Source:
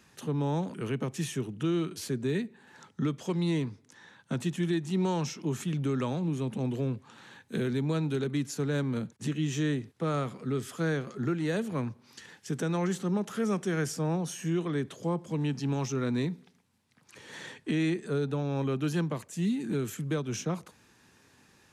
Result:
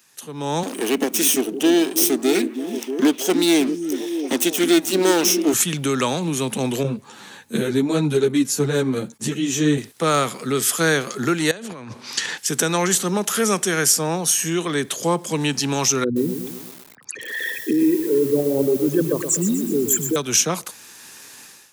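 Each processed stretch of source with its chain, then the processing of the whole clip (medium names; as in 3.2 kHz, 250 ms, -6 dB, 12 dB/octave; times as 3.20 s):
0.63–5.54 s: comb filter that takes the minimum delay 0.33 ms + resonant low shelf 190 Hz -13 dB, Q 3 + repeats whose band climbs or falls 317 ms, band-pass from 220 Hz, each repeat 0.7 oct, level -5 dB
6.83–9.78 s: tilt shelf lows +6 dB, about 740 Hz + three-phase chorus
11.51–12.38 s: distance through air 76 m + compressor with a negative ratio -42 dBFS
16.04–20.16 s: resonances exaggerated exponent 3 + bit-crushed delay 123 ms, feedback 55%, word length 9-bit, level -8 dB
whole clip: RIAA curve recording; level rider gain up to 16.5 dB; trim -1.5 dB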